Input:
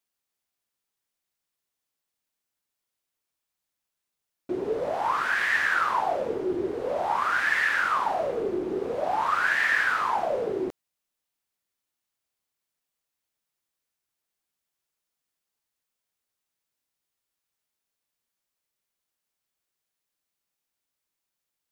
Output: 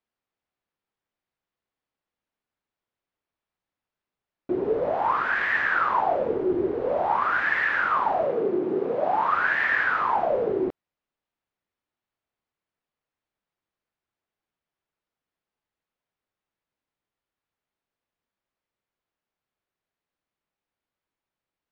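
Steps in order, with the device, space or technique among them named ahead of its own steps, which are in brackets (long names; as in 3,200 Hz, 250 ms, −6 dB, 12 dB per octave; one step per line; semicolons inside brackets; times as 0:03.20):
phone in a pocket (low-pass filter 3,900 Hz 12 dB per octave; high-shelf EQ 2,500 Hz −11 dB)
0:08.25–0:09.31: high-pass filter 120 Hz 24 dB per octave
level +4 dB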